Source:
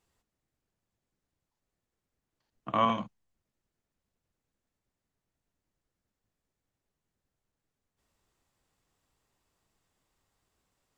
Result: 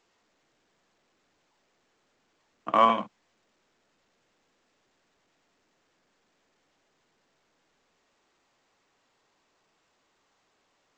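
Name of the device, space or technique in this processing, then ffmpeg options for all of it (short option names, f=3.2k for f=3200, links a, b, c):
telephone: -af "highpass=300,lowpass=3.1k,volume=6.5dB" -ar 16000 -c:a pcm_alaw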